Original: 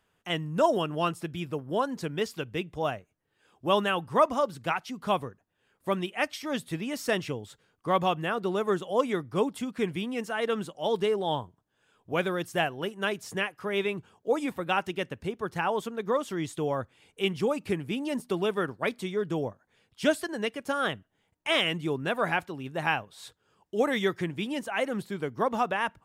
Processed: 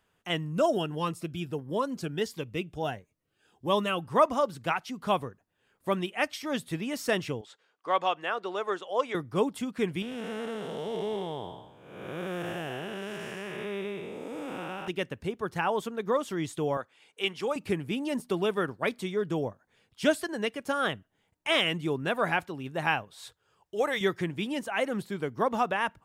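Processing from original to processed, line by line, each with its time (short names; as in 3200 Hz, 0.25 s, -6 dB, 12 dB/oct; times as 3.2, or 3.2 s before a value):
0.52–4.05 cascading phaser rising 1.5 Hz
7.41–9.15 BPF 510–6000 Hz
10.02–14.88 time blur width 0.428 s
16.77–17.56 weighting filter A
23.15–24.01 bell 240 Hz -11.5 dB 0.85 oct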